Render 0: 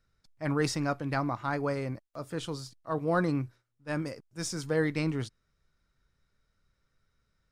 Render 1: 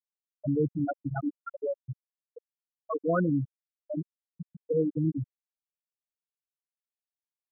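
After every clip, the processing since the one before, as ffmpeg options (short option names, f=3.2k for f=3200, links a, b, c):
-filter_complex "[0:a]afftfilt=real='re*gte(hypot(re,im),0.224)':imag='im*gte(hypot(re,im),0.224)':win_size=1024:overlap=0.75,asplit=2[a][b];[b]alimiter=level_in=3.5dB:limit=-24dB:level=0:latency=1:release=44,volume=-3.5dB,volume=-1.5dB[c];[a][c]amix=inputs=2:normalize=0"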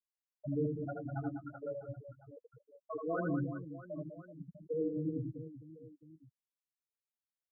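-af "flanger=delay=1.9:depth=7.4:regen=-37:speed=0.51:shape=sinusoidal,aecho=1:1:80|200|380|650|1055:0.631|0.398|0.251|0.158|0.1,volume=-6dB"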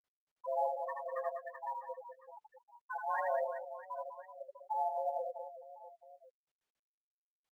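-af "afreqshift=390" -ar 44100 -c:a adpcm_ima_wav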